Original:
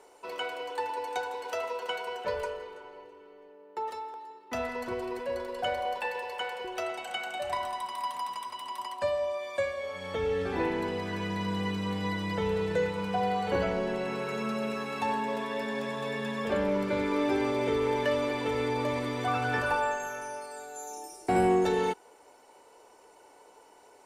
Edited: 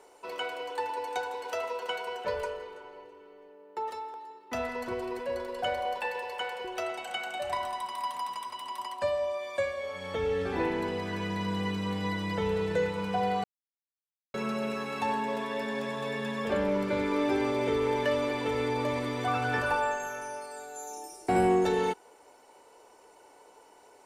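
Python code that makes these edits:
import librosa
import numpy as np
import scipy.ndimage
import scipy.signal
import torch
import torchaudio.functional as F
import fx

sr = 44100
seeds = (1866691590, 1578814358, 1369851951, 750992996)

y = fx.edit(x, sr, fx.silence(start_s=13.44, length_s=0.9), tone=tone)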